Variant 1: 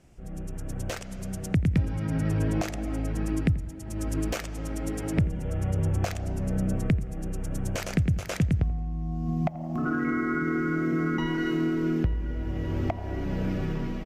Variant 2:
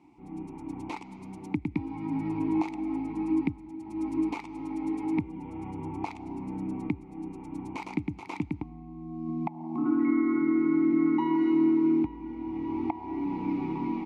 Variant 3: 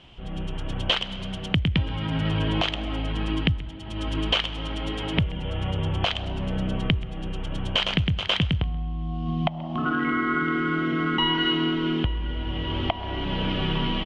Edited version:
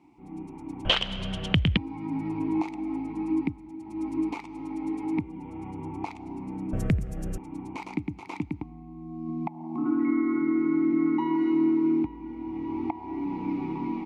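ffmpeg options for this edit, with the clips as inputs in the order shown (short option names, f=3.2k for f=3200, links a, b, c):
-filter_complex "[1:a]asplit=3[a][b][c];[a]atrim=end=0.852[d];[2:a]atrim=start=0.848:end=1.772[e];[b]atrim=start=1.768:end=6.732[f];[0:a]atrim=start=6.728:end=7.382[g];[c]atrim=start=7.378[h];[d][e]acrossfade=d=0.004:c1=hsin:c2=hsin[i];[i][f]acrossfade=d=0.004:c1=hsin:c2=hsin[j];[j][g]acrossfade=d=0.004:c1=hsin:c2=hsin[k];[k][h]acrossfade=d=0.004:c1=hsin:c2=hsin"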